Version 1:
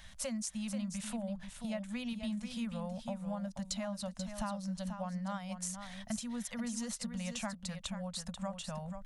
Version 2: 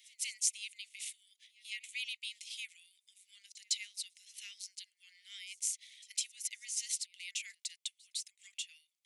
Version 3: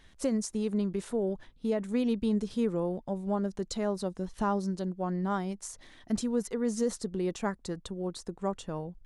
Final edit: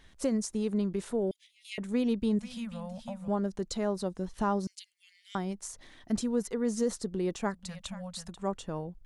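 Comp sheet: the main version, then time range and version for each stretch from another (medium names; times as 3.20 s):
3
1.31–1.78 s: from 2
2.39–3.28 s: from 1
4.67–5.35 s: from 2
7.59–8.37 s: from 1, crossfade 0.24 s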